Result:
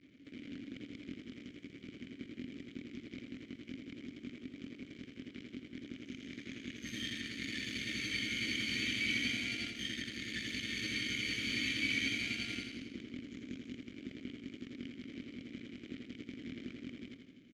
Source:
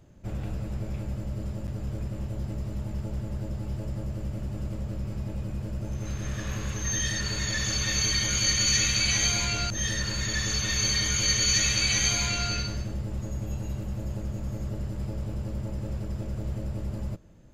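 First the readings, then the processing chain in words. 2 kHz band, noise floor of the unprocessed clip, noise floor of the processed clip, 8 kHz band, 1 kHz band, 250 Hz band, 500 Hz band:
-6.0 dB, -36 dBFS, -56 dBFS, -24.0 dB, -21.0 dB, -6.0 dB, -12.5 dB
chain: delta modulation 64 kbps, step -33.5 dBFS; downsampling 16000 Hz; added harmonics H 7 -15 dB, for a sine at -15 dBFS; vowel filter i; feedback echo 84 ms, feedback 56%, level -7 dB; gain +5.5 dB

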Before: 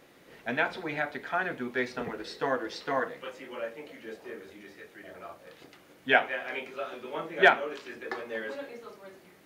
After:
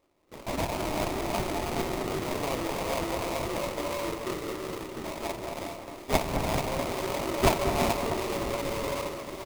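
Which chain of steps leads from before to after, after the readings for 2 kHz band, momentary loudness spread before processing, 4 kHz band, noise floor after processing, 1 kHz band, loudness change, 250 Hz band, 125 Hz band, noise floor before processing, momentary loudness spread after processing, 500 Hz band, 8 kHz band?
-7.5 dB, 22 LU, +3.5 dB, -44 dBFS, +2.0 dB, 0.0 dB, +6.5 dB, +14.5 dB, -57 dBFS, 9 LU, +2.5 dB, n/a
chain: steep high-pass 280 Hz 96 dB/oct; comb 3.2 ms, depth 56%; non-linear reverb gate 0.45 s rising, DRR 1.5 dB; in parallel at +2.5 dB: negative-ratio compressor -38 dBFS, ratio -1; on the sum: sample-rate reducer 1600 Hz, jitter 20%; gate with hold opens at -31 dBFS; on a send: echo with dull and thin repeats by turns 0.215 s, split 2000 Hz, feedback 68%, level -8.5 dB; on the sum: gain -5 dB

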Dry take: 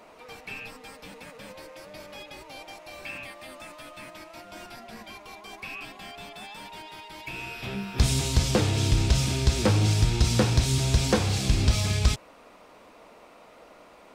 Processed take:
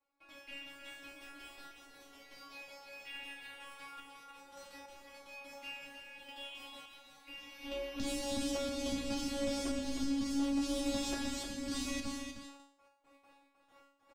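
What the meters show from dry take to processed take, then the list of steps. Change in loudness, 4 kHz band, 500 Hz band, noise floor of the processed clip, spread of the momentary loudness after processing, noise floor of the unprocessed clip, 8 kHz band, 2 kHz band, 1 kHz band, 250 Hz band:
-14.5 dB, -11.0 dB, -9.0 dB, -71 dBFS, 19 LU, -52 dBFS, -12.0 dB, -10.5 dB, -11.5 dB, -5.5 dB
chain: gate with hold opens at -40 dBFS; in parallel at -0.5 dB: limiter -20.5 dBFS, peak gain reduction 10 dB; on the sum: ring modulator 160 Hz; resonator 280 Hz, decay 0.51 s, harmonics all, mix 100%; random-step tremolo, depth 55%; soft clip -33.5 dBFS, distortion -18 dB; on a send: echo 0.31 s -7 dB; on the sum: gain +6.5 dB

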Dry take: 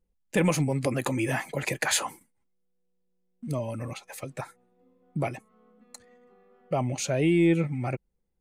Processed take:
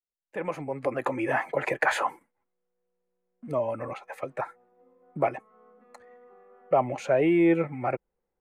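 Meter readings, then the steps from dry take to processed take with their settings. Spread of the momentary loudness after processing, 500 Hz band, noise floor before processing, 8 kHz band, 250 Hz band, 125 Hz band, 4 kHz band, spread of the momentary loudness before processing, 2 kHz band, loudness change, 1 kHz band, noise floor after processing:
15 LU, +3.5 dB, -74 dBFS, -15.5 dB, -1.0 dB, -9.0 dB, -9.0 dB, 16 LU, +1.5 dB, 0.0 dB, +6.0 dB, -83 dBFS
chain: opening faded in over 1.51 s; three-band isolator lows -16 dB, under 380 Hz, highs -23 dB, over 2000 Hz; gain +7.5 dB

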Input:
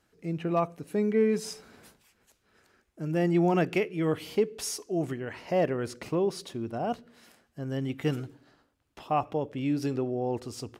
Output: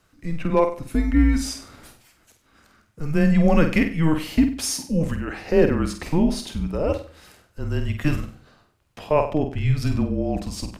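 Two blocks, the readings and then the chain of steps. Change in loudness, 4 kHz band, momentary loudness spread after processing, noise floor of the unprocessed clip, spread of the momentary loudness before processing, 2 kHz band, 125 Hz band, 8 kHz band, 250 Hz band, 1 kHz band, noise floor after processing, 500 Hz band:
+7.0 dB, +8.0 dB, 11 LU, -72 dBFS, 12 LU, +8.5 dB, +10.0 dB, +8.0 dB, +8.5 dB, +3.0 dB, -63 dBFS, +4.5 dB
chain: frequency shift -160 Hz; flutter echo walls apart 8.3 m, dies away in 0.39 s; gain +7.5 dB

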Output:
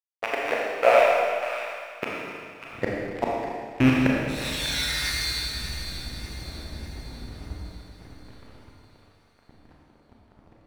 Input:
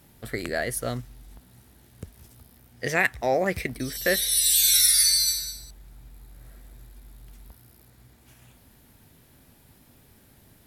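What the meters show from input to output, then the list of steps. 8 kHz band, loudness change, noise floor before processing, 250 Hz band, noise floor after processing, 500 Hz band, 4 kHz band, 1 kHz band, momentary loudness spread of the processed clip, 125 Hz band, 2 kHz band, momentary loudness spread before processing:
-16.0 dB, -4.0 dB, -57 dBFS, +9.0 dB, -60 dBFS, +5.5 dB, -4.0 dB, +7.0 dB, 19 LU, +6.0 dB, +1.0 dB, 19 LU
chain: rattling part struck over -37 dBFS, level -16 dBFS; LPF 1500 Hz 12 dB/oct; in parallel at -2.5 dB: compressor, threshold -43 dBFS, peak gain reduction 21.5 dB; on the sum: flipped gate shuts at -18 dBFS, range -31 dB; high-pass sweep 680 Hz -> 65 Hz, 1.71–2.97; crossover distortion -42.5 dBFS; on a send: split-band echo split 1000 Hz, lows 0.101 s, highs 0.595 s, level -10 dB; on the sum: Schroeder reverb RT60 2 s, combs from 27 ms, DRR -3.5 dB; gain +8.5 dB

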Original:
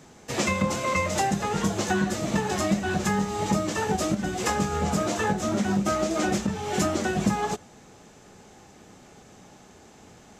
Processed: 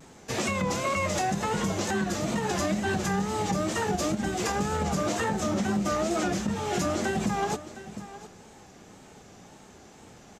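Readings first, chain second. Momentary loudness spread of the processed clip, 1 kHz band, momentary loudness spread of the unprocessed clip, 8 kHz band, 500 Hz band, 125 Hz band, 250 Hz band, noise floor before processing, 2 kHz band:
5 LU, -2.0 dB, 2 LU, -2.0 dB, -1.5 dB, -2.5 dB, -2.5 dB, -52 dBFS, -2.0 dB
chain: wow and flutter 85 cents; echo 0.71 s -16.5 dB; limiter -18.5 dBFS, peak gain reduction 6.5 dB

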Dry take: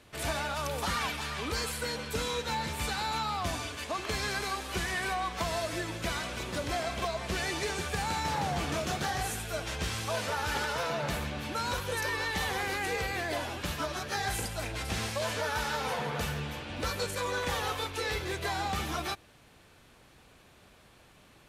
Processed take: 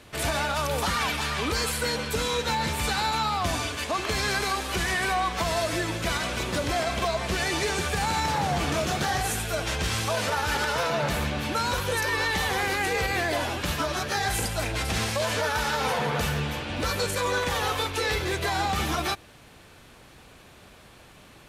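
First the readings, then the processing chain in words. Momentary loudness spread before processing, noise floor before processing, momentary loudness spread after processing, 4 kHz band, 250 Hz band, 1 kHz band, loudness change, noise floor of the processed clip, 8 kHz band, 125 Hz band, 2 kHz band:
4 LU, -59 dBFS, 3 LU, +6.5 dB, +6.5 dB, +6.0 dB, +6.5 dB, -51 dBFS, +6.5 dB, +6.5 dB, +6.5 dB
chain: limiter -24.5 dBFS, peak gain reduction 5.5 dB; gain +7.5 dB

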